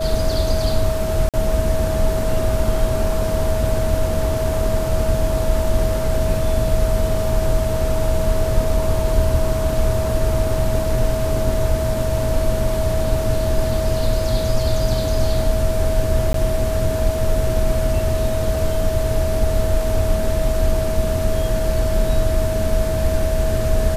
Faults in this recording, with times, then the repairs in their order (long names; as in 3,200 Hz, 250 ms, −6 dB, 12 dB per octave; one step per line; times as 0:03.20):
whistle 640 Hz −22 dBFS
0:01.29–0:01.34: drop-out 47 ms
0:16.33–0:16.34: drop-out 13 ms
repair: notch filter 640 Hz, Q 30
repair the gap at 0:01.29, 47 ms
repair the gap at 0:16.33, 13 ms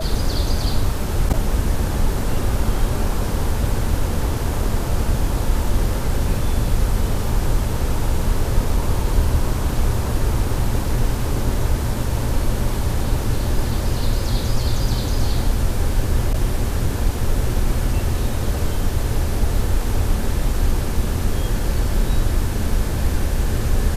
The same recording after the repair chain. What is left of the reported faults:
none of them is left